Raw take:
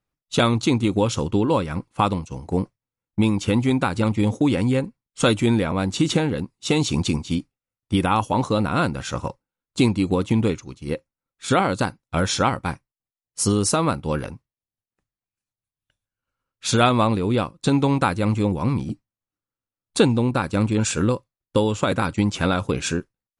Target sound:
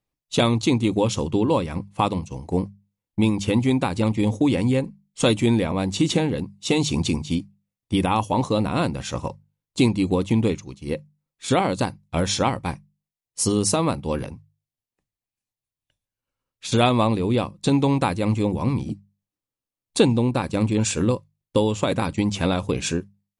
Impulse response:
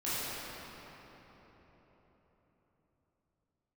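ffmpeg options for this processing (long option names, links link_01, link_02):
-filter_complex "[0:a]equalizer=frequency=1400:width=3.7:gain=-9.5,bandreject=frequency=50:width_type=h:width=6,bandreject=frequency=100:width_type=h:width=6,bandreject=frequency=150:width_type=h:width=6,bandreject=frequency=200:width_type=h:width=6,asettb=1/sr,asplit=3[link_01][link_02][link_03];[link_01]atrim=end=14.224[link_04];[link_02]atrim=start=14.22:end=16.72,asetpts=PTS-STARTPTS,afade=type=in:duration=0.004:curve=qsin,afade=type=out:start_time=2.496:duration=0.004:curve=qsin,acrossover=split=230[link_05][link_06];[link_06]acompressor=threshold=-32dB:ratio=4[link_07];[link_05][link_07]amix=inputs=2:normalize=0[link_08];[link_03]atrim=start=16.716[link_09];[link_04][link_08]acrossfade=duration=0.004:curve1=hsin:curve2=qsin[link_10];[link_10][link_09]acrossfade=duration=0.004:curve1=qsin:curve2=hsin"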